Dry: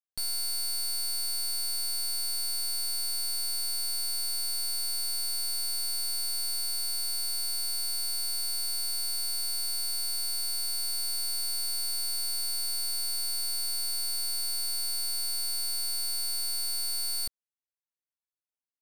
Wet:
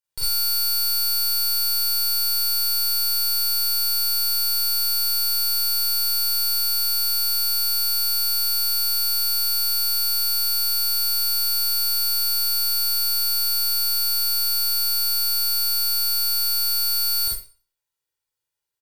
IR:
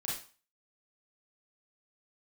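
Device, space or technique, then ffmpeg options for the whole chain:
microphone above a desk: -filter_complex "[0:a]aecho=1:1:2.1:0.69[link_01];[1:a]atrim=start_sample=2205[link_02];[link_01][link_02]afir=irnorm=-1:irlink=0,volume=6.5dB"

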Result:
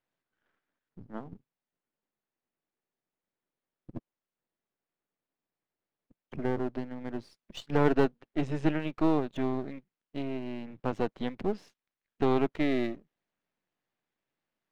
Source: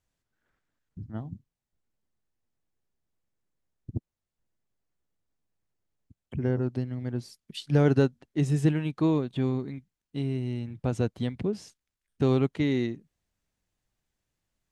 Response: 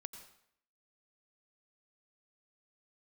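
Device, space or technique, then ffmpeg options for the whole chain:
crystal radio: -af "highpass=230,lowpass=2900,aeval=exprs='if(lt(val(0),0),0.251*val(0),val(0))':channel_layout=same,volume=3.5dB"

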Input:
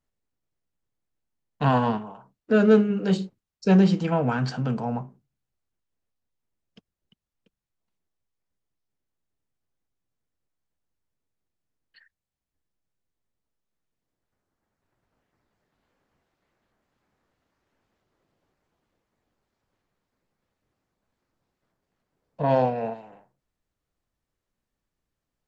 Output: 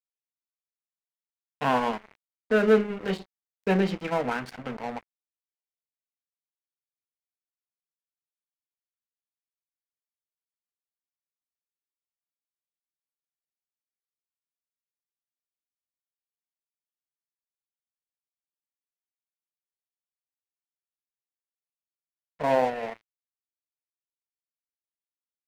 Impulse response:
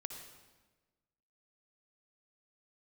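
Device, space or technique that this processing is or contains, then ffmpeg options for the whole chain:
pocket radio on a weak battery: -af "highpass=270,lowpass=4500,aeval=exprs='sgn(val(0))*max(abs(val(0))-0.015,0)':channel_layout=same,equalizer=frequency=2100:width_type=o:width=0.5:gain=7"

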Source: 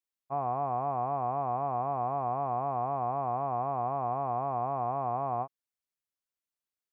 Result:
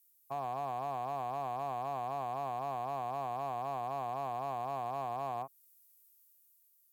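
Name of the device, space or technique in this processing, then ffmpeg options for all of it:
FM broadcast chain: -filter_complex "[0:a]highpass=55,dynaudnorm=framelen=150:gausssize=11:maxgain=3.5dB,acrossover=split=210|940[link_01][link_02][link_03];[link_01]acompressor=threshold=-49dB:ratio=4[link_04];[link_02]acompressor=threshold=-32dB:ratio=4[link_05];[link_03]acompressor=threshold=-38dB:ratio=4[link_06];[link_04][link_05][link_06]amix=inputs=3:normalize=0,aemphasis=mode=production:type=50fm,alimiter=level_in=3.5dB:limit=-24dB:level=0:latency=1:release=230,volume=-3.5dB,asoftclip=type=hard:threshold=-29.5dB,lowpass=frequency=15000:width=0.5412,lowpass=frequency=15000:width=1.3066,aemphasis=mode=production:type=50fm"

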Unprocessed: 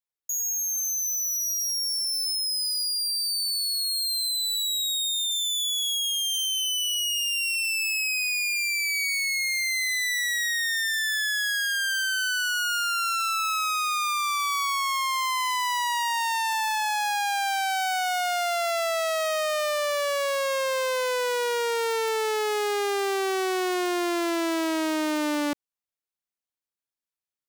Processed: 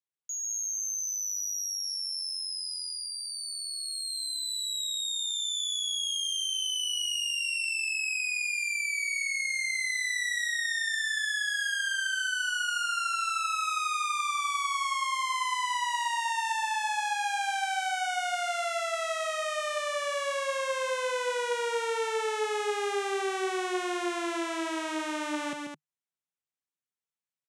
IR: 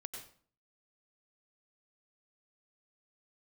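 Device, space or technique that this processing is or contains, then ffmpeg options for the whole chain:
car door speaker: -af "highpass=100,equalizer=frequency=150:width_type=q:width=4:gain=8,equalizer=frequency=310:width_type=q:width=4:gain=-6,equalizer=frequency=620:width_type=q:width=4:gain=-4,equalizer=frequency=4600:width_type=q:width=4:gain=-8,lowpass=frequency=9400:width=0.5412,lowpass=frequency=9400:width=1.3066,aecho=1:1:137|212.8:0.562|0.447,volume=-5dB"

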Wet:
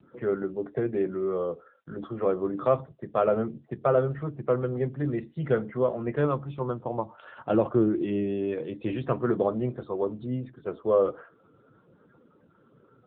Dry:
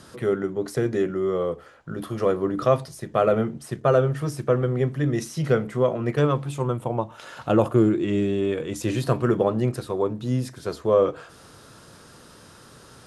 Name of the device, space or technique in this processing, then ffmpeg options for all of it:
mobile call with aggressive noise cancelling: -af "highpass=frequency=170:poles=1,afftdn=noise_reduction=35:noise_floor=-44,volume=-2.5dB" -ar 8000 -c:a libopencore_amrnb -b:a 7950

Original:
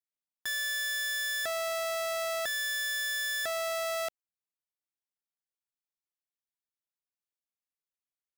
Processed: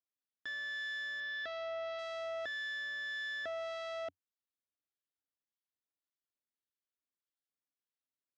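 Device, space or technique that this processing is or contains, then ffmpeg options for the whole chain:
guitar amplifier with harmonic tremolo: -filter_complex "[0:a]acrossover=split=1500[link_01][link_02];[link_01]aeval=exprs='val(0)*(1-0.5/2+0.5/2*cos(2*PI*1.7*n/s))':channel_layout=same[link_03];[link_02]aeval=exprs='val(0)*(1-0.5/2-0.5/2*cos(2*PI*1.7*n/s))':channel_layout=same[link_04];[link_03][link_04]amix=inputs=2:normalize=0,asoftclip=type=tanh:threshold=-33.5dB,highpass=81,equalizer=frequency=90:width_type=q:width=4:gain=6,equalizer=frequency=150:width_type=q:width=4:gain=-10,equalizer=frequency=280:width_type=q:width=4:gain=7,equalizer=frequency=860:width_type=q:width=4:gain=-10,equalizer=frequency=2400:width_type=q:width=4:gain=-8,lowpass=frequency=4300:width=0.5412,lowpass=frequency=4300:width=1.3066,asettb=1/sr,asplit=3[link_05][link_06][link_07];[link_05]atrim=end=1.204[link_08];[link_06]atrim=start=1.2:end=1.99,asetpts=PTS-STARTPTS,afade=type=in:duration=0.004:curve=qsin,afade=type=out:start_time=0.786:duration=0.004:curve=qsin,lowpass=frequency=5200:width=0.5412,lowpass=frequency=5200:width=1.3066[link_09];[link_07]atrim=start=1.986[link_10];[link_08][link_09]acrossfade=duration=0.004:curve1=hsin:curve2=qsin[link_11];[link_11][link_10]acrossfade=duration=0.004:curve1=qsin:curve2=hsin"

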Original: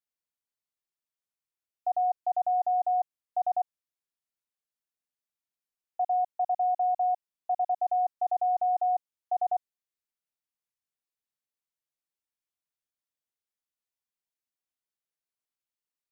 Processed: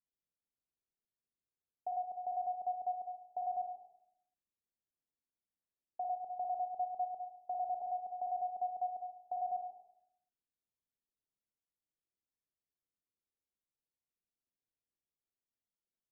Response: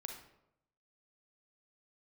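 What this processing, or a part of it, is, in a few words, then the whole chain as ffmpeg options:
television next door: -filter_complex "[0:a]acompressor=threshold=-28dB:ratio=6,lowpass=440[link_01];[1:a]atrim=start_sample=2205[link_02];[link_01][link_02]afir=irnorm=-1:irlink=0,volume=5.5dB"

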